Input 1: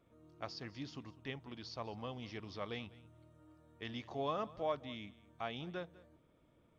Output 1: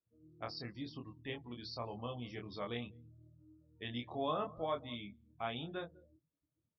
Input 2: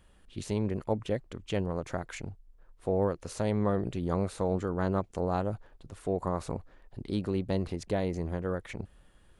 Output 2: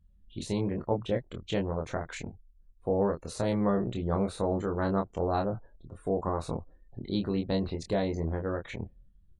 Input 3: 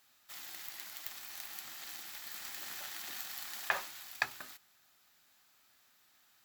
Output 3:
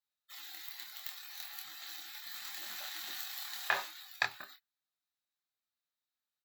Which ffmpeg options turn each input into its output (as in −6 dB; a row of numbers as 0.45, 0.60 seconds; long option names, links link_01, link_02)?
-filter_complex "[0:a]afftdn=noise_reduction=29:noise_floor=-53,equalizer=frequency=3900:width_type=o:width=0.24:gain=8,asplit=2[link_01][link_02];[link_02]adelay=25,volume=-4dB[link_03];[link_01][link_03]amix=inputs=2:normalize=0"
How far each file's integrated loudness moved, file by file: +1.0, +1.0, +1.0 LU